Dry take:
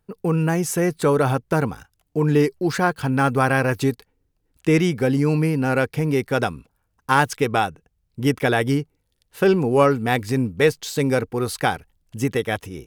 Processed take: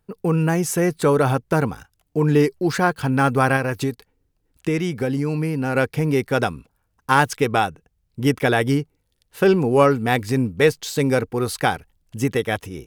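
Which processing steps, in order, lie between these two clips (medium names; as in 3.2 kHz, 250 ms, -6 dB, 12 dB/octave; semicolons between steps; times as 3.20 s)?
3.56–5.75 s: compression 2.5:1, threshold -22 dBFS, peak gain reduction 6.5 dB; trim +1 dB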